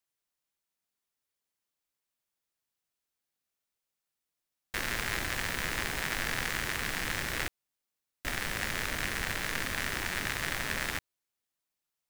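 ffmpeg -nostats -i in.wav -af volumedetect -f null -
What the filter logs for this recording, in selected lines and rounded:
mean_volume: -37.1 dB
max_volume: -14.0 dB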